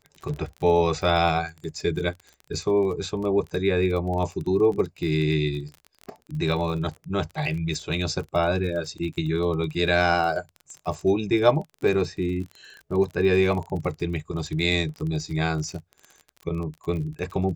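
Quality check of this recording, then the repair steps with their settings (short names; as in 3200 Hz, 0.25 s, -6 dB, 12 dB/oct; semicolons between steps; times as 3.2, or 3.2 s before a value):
crackle 32/s -32 dBFS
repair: de-click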